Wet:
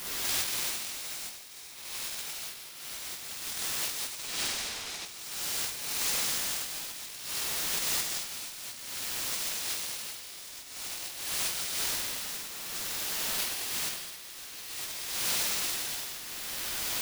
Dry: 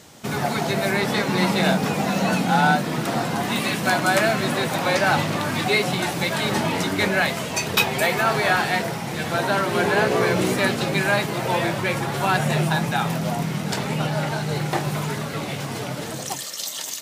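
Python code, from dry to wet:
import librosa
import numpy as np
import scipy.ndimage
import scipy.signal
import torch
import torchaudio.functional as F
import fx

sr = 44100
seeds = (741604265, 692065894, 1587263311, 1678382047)

p1 = fx.cheby2_highpass(x, sr, hz=360.0, order=4, stop_db=70, at=(11.75, 13.4))
p2 = fx.spec_gate(p1, sr, threshold_db=-30, keep='weak')
p3 = fx.quant_dither(p2, sr, seeds[0], bits=6, dither='triangular')
p4 = p2 + (p3 * librosa.db_to_amplitude(-3.0))
p5 = (np.kron(scipy.signal.resample_poly(p4, 1, 3), np.eye(3)[0]) * 3)[:len(p4)]
p6 = fx.air_absorb(p5, sr, metres=73.0, at=(4.19, 5.06))
p7 = p6 + fx.room_flutter(p6, sr, wall_m=8.3, rt60_s=1.3, dry=0)
p8 = fx.dynamic_eq(p7, sr, hz=3700.0, q=0.79, threshold_db=-45.0, ratio=4.0, max_db=5)
p9 = fx.over_compress(p8, sr, threshold_db=-31.0, ratio=-0.5)
p10 = fx.tremolo_shape(p9, sr, shape='triangle', hz=0.54, depth_pct=75)
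p11 = p10 + 10.0 ** (-12.5 / 20.0) * np.pad(p10, (int(167 * sr / 1000.0), 0))[:len(p10)]
y = p11 * np.sign(np.sin(2.0 * np.pi * 770.0 * np.arange(len(p11)) / sr))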